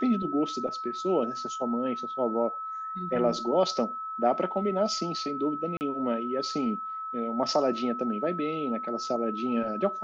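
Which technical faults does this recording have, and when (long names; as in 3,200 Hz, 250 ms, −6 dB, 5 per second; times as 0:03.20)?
whistle 1,300 Hz −33 dBFS
0:05.77–0:05.81: drop-out 39 ms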